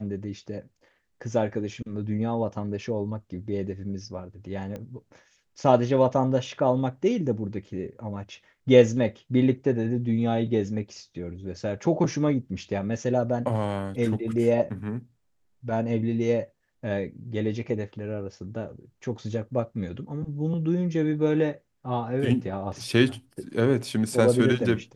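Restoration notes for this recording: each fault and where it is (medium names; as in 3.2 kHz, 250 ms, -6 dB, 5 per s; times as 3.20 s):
4.76 s: pop -24 dBFS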